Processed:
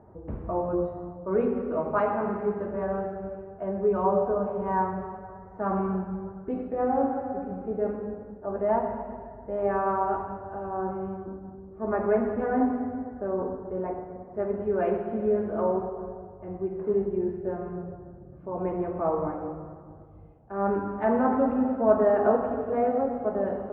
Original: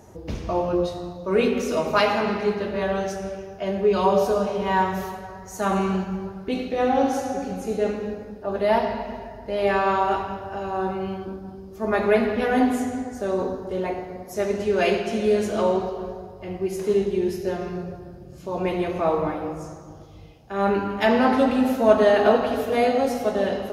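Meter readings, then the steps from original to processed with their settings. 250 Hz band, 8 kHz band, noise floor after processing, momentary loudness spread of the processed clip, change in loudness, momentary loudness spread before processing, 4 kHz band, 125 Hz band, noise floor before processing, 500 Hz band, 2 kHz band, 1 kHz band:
-4.5 dB, under -35 dB, -47 dBFS, 13 LU, -5.0 dB, 13 LU, under -30 dB, -4.5 dB, -42 dBFS, -4.5 dB, -12.0 dB, -4.5 dB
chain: LPF 1400 Hz 24 dB/oct; gain -4.5 dB

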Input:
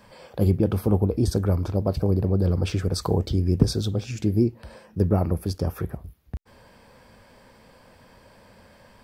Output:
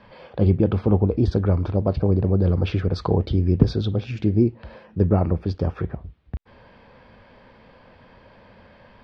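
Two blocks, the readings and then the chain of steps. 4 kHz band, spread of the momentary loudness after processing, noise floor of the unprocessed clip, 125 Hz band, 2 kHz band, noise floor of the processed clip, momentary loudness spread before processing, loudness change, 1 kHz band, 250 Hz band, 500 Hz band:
-3.0 dB, 15 LU, -54 dBFS, +2.5 dB, +2.5 dB, -51 dBFS, 15 LU, +2.5 dB, +2.5 dB, +2.5 dB, +2.5 dB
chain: LPF 3800 Hz 24 dB/oct; gain +2.5 dB

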